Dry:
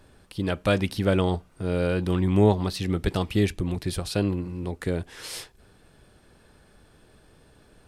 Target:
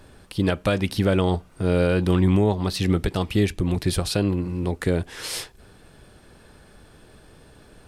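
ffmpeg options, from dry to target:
-af "alimiter=limit=-17dB:level=0:latency=1:release=350,volume=6dB"

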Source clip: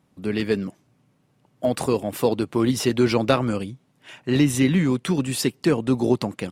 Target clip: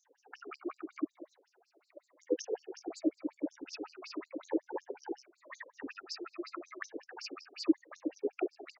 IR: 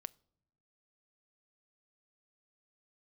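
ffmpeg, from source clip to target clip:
-filter_complex "[0:a]afftfilt=real='re*pow(10,17/40*sin(2*PI*(1.1*log(max(b,1)*sr/1024/100)/log(2)-(-1.2)*(pts-256)/sr)))':imag='im*pow(10,17/40*sin(2*PI*(1.1*log(max(b,1)*sr/1024/100)/log(2)-(-1.2)*(pts-256)/sr)))':win_size=1024:overlap=0.75,equalizer=f=4.9k:t=o:w=0.3:g=-15,asetrate=32667,aresample=44100,aecho=1:1:298:0.562,acrossover=split=130[a][b];[b]acompressor=threshold=-18dB:ratio=4[c];[a][c]amix=inputs=2:normalize=0,asetrate=39289,aresample=44100,atempo=1.12246,acrossover=split=350[d][e];[d]asplit=2[f][g];[g]adelay=32,volume=-6.5dB[h];[f][h]amix=inputs=2:normalize=0[i];[e]acompressor=threshold=-45dB:ratio=5[j];[i][j]amix=inputs=2:normalize=0,aresample=16000,aresample=44100,tremolo=f=14:d=0.43,lowshelf=f=95:g=-3.5,afftfilt=real='re*between(b*sr/1024,410*pow(6000/410,0.5+0.5*sin(2*PI*5.4*pts/sr))/1.41,410*pow(6000/410,0.5+0.5*sin(2*PI*5.4*pts/sr))*1.41)':imag='im*between(b*sr/1024,410*pow(6000/410,0.5+0.5*sin(2*PI*5.4*pts/sr))/1.41,410*pow(6000/410,0.5+0.5*sin(2*PI*5.4*pts/sr))*1.41)':win_size=1024:overlap=0.75,volume=7.5dB"

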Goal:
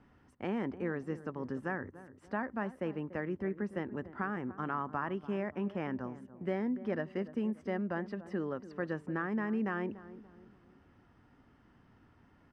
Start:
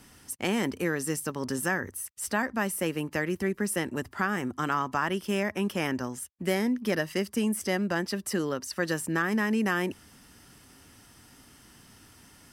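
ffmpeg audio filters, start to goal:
-filter_complex "[0:a]lowpass=1.5k,asplit=2[a][b];[b]adelay=290,lowpass=f=900:p=1,volume=-14dB,asplit=2[c][d];[d]adelay=290,lowpass=f=900:p=1,volume=0.44,asplit=2[e][f];[f]adelay=290,lowpass=f=900:p=1,volume=0.44,asplit=2[g][h];[h]adelay=290,lowpass=f=900:p=1,volume=0.44[i];[a][c][e][g][i]amix=inputs=5:normalize=0,volume=-6.5dB"

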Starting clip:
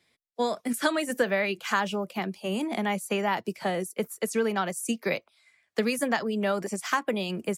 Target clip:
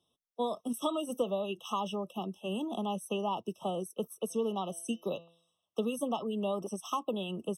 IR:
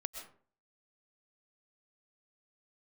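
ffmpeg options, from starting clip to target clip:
-filter_complex "[0:a]asplit=3[a][b][c];[a]afade=t=out:st=4.29:d=0.02[d];[b]bandreject=f=168.3:t=h:w=4,bandreject=f=336.6:t=h:w=4,bandreject=f=504.9:t=h:w=4,bandreject=f=673.2:t=h:w=4,bandreject=f=841.5:t=h:w=4,bandreject=f=1.0098k:t=h:w=4,bandreject=f=1.1781k:t=h:w=4,bandreject=f=1.3464k:t=h:w=4,bandreject=f=1.5147k:t=h:w=4,bandreject=f=1.683k:t=h:w=4,bandreject=f=1.8513k:t=h:w=4,bandreject=f=2.0196k:t=h:w=4,bandreject=f=2.1879k:t=h:w=4,bandreject=f=2.3562k:t=h:w=4,bandreject=f=2.5245k:t=h:w=4,bandreject=f=2.6928k:t=h:w=4,bandreject=f=2.8611k:t=h:w=4,bandreject=f=3.0294k:t=h:w=4,bandreject=f=3.1977k:t=h:w=4,bandreject=f=3.366k:t=h:w=4,bandreject=f=3.5343k:t=h:w=4,bandreject=f=3.7026k:t=h:w=4,bandreject=f=3.8709k:t=h:w=4,bandreject=f=4.0392k:t=h:w=4,bandreject=f=4.2075k:t=h:w=4,bandreject=f=4.3758k:t=h:w=4,bandreject=f=4.5441k:t=h:w=4,bandreject=f=4.7124k:t=h:w=4,bandreject=f=4.8807k:t=h:w=4,bandreject=f=5.049k:t=h:w=4,bandreject=f=5.2173k:t=h:w=4,bandreject=f=5.3856k:t=h:w=4,bandreject=f=5.5539k:t=h:w=4,bandreject=f=5.7222k:t=h:w=4,bandreject=f=5.8905k:t=h:w=4,afade=t=in:st=4.29:d=0.02,afade=t=out:st=5.8:d=0.02[e];[c]afade=t=in:st=5.8:d=0.02[f];[d][e][f]amix=inputs=3:normalize=0,afftfilt=real='re*eq(mod(floor(b*sr/1024/1300),2),0)':imag='im*eq(mod(floor(b*sr/1024/1300),2),0)':win_size=1024:overlap=0.75,volume=-5.5dB"

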